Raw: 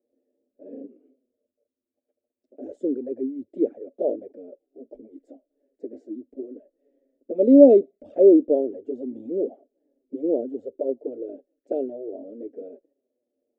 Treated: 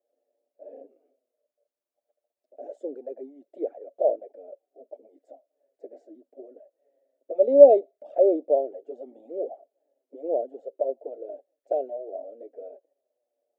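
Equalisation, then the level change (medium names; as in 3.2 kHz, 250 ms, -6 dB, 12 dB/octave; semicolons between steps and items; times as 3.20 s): resonant high-pass 690 Hz, resonance Q 3.4; -2.5 dB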